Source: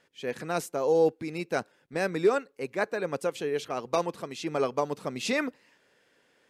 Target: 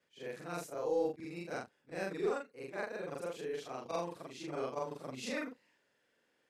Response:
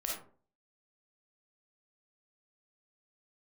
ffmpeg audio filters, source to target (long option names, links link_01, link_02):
-af "afftfilt=real='re':imag='-im':win_size=4096:overlap=0.75,aeval=exprs='0.15*(cos(1*acos(clip(val(0)/0.15,-1,1)))-cos(1*PI/2))+0.00106*(cos(4*acos(clip(val(0)/0.15,-1,1)))-cos(4*PI/2))':channel_layout=same,volume=-6dB"